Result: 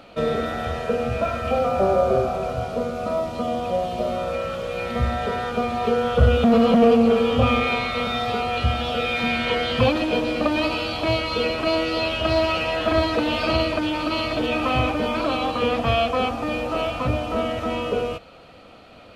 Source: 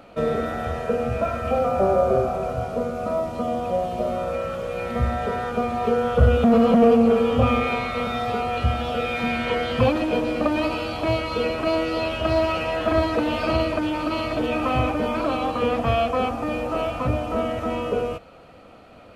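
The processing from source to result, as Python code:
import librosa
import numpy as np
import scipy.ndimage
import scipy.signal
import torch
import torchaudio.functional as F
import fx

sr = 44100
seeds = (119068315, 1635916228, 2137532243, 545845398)

y = fx.peak_eq(x, sr, hz=3800.0, db=7.5, octaves=1.3)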